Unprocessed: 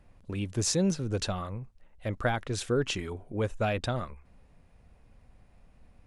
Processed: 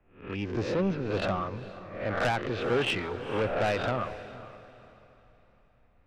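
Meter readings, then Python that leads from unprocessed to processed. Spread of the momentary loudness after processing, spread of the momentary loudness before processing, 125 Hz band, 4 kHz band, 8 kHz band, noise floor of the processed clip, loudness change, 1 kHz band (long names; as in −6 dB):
14 LU, 12 LU, −2.5 dB, −0.5 dB, −16.0 dB, −63 dBFS, +1.0 dB, +4.5 dB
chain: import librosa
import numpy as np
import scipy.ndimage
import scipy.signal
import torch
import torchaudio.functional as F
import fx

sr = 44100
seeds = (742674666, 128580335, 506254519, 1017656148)

p1 = fx.spec_swells(x, sr, rise_s=0.56)
p2 = scipy.signal.sosfilt(scipy.signal.butter(4, 2700.0, 'lowpass', fs=sr, output='sos'), p1)
p3 = fx.low_shelf(p2, sr, hz=200.0, db=-11.0)
p4 = 10.0 ** (-30.0 / 20.0) * np.tanh(p3 / 10.0 ** (-30.0 / 20.0))
p5 = p4 + fx.echo_diffused(p4, sr, ms=462, feedback_pct=47, wet_db=-11, dry=0)
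p6 = fx.band_widen(p5, sr, depth_pct=40)
y = F.gain(torch.from_numpy(p6), 6.5).numpy()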